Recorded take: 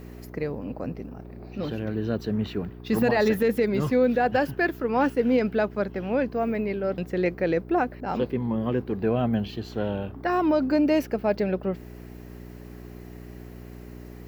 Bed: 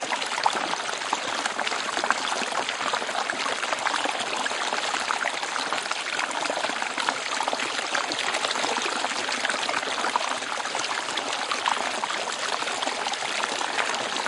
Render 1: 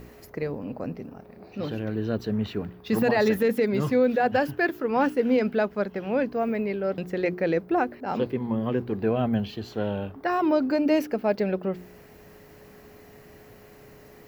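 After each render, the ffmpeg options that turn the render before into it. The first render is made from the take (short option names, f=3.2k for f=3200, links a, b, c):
-af "bandreject=f=60:t=h:w=4,bandreject=f=120:t=h:w=4,bandreject=f=180:t=h:w=4,bandreject=f=240:t=h:w=4,bandreject=f=300:t=h:w=4,bandreject=f=360:t=h:w=4"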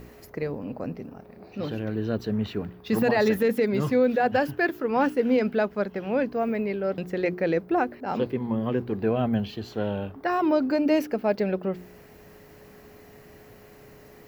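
-af anull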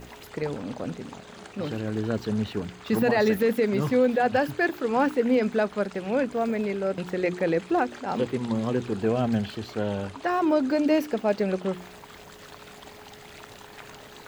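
-filter_complex "[1:a]volume=-20dB[a];[0:a][a]amix=inputs=2:normalize=0"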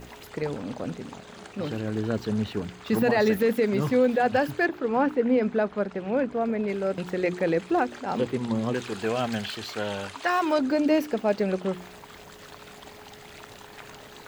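-filter_complex "[0:a]asettb=1/sr,asplit=3[a][b][c];[a]atrim=end=4.664[d];[b]atrim=start=4.66:end=6.68,asetpts=PTS-STARTPTS,afade=t=in:d=0.004:c=qsin,afade=t=out:st=2.016:d=0.004:c=qsin,lowpass=f=1.9k:p=1[e];[c]atrim=start=6.676[f];[d][e]acrossfade=d=0.004:c1=hsin:c2=qsin[g];[g][f]acrossfade=d=0.004:c1=qsin:c2=hsin,asettb=1/sr,asplit=3[h][i][j];[h]atrim=end=8.744[k];[i]atrim=start=8.74:end=10.59,asetpts=PTS-STARTPTS,afade=t=in:d=0.004:c=qsin,afade=t=out:st=1.846:d=0.004:c=qsin,tiltshelf=f=690:g=-7.5[l];[j]atrim=start=10.586[m];[k][l]acrossfade=d=0.004:c1=hsin:c2=qsin[n];[n][m]acrossfade=d=0.004:c1=qsin:c2=hsin"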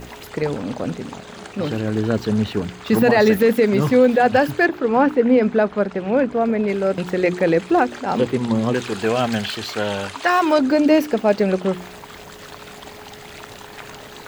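-af "volume=7.5dB"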